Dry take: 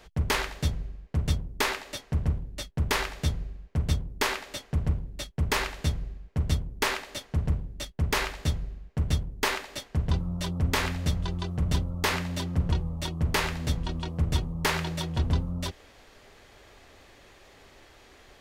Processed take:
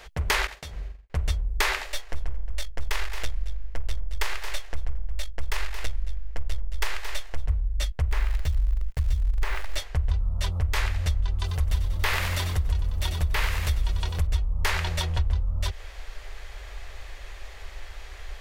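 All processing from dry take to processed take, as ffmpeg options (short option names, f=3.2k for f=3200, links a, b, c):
-filter_complex "[0:a]asettb=1/sr,asplit=3[a][b][c];[a]atrim=end=0.474[d];[b]atrim=start=0.47:end=1.1,asetpts=PTS-STARTPTS,afade=t=in:d=0.004:c=qsin,afade=t=out:st=0.626:d=0.004:c=qsin,agate=range=-33dB:threshold=-34dB:ratio=3:release=100:detection=peak,highpass=f=130:p=1,acompressor=threshold=-38dB:ratio=10:attack=3.2:release=140:knee=1:detection=peak[e];[c]atrim=start=1.096[f];[d][e]acrossfade=d=0.004:c1=hsin:c2=qsin[g];[g][f]acrossfade=d=0.004:c1=qsin:c2=hsin,asettb=1/sr,asplit=3[h][i][j];[h]atrim=end=1.864[k];[i]atrim=start=1.86:end=7.48,asetpts=PTS-STARTPTS,afade=t=in:d=0.004:c=qsin,afade=t=out:st=5.616:d=0.004:c=qsin,aeval=exprs='if(lt(val(0),0),0.251*val(0),val(0))':c=same,equalizer=f=110:t=o:w=1.3:g=-14,aecho=1:1:223:0.224,atrim=end_sample=247842[l];[j]atrim=start=7.476[m];[k][l]acrossfade=d=0.004:c1=hsin:c2=qsin[n];[n][m]acrossfade=d=0.004:c1=qsin:c2=hsin,asettb=1/sr,asplit=3[o][p][q];[o]atrim=end=8.114[r];[p]atrim=start=8.11:end=9.77,asetpts=PTS-STARTPTS,afade=t=in:d=0.004:c=qsin,afade=t=out:st=1.656:d=0.004:c=qsin,acrusher=bits=7:dc=4:mix=0:aa=0.000001,lowshelf=f=130:g=9.5,acrossover=split=2700|7000[s][t][u];[s]acompressor=threshold=-26dB:ratio=4[v];[t]acompressor=threshold=-46dB:ratio=4[w];[u]acompressor=threshold=-50dB:ratio=4[x];[v][w][x]amix=inputs=3:normalize=0[y];[q]atrim=start=9.766[z];[r][y]acrossfade=d=0.004:c1=hsin:c2=qsin[aa];[aa][z]acrossfade=d=0.004:c1=qsin:c2=hsin,asettb=1/sr,asplit=3[ab][ac][ad];[ab]atrim=end=11.394[ae];[ac]atrim=start=11.39:end=14.27,asetpts=PTS-STARTPTS,afade=t=in:d=0.004:c=qsin,afade=t=out:st=2.876:d=0.004:c=qsin,aemphasis=mode=production:type=50fm,acrossover=split=3800[af][ag];[ag]acompressor=threshold=-37dB:ratio=4:attack=1:release=60[ah];[af][ah]amix=inputs=2:normalize=0,asplit=7[ai][aj][ak][al][am][an][ao];[aj]adelay=94,afreqshift=48,volume=-9dB[ap];[ak]adelay=188,afreqshift=96,volume=-14.2dB[aq];[al]adelay=282,afreqshift=144,volume=-19.4dB[ar];[am]adelay=376,afreqshift=192,volume=-24.6dB[as];[an]adelay=470,afreqshift=240,volume=-29.8dB[at];[ao]adelay=564,afreqshift=288,volume=-35dB[au];[ai][ap][aq][ar][as][at][au]amix=inputs=7:normalize=0,atrim=end_sample=127008[av];[ad]atrim=start=14.266[aw];[ae][av]acrossfade=d=0.004:c1=hsin:c2=qsin[ax];[ax][aw]acrossfade=d=0.004:c1=qsin:c2=hsin,asubboost=boost=9:cutoff=61,acompressor=threshold=-27dB:ratio=5,equalizer=f=125:t=o:w=1:g=-7,equalizer=f=250:t=o:w=1:g=-11,equalizer=f=2k:t=o:w=1:g=3,volume=7dB"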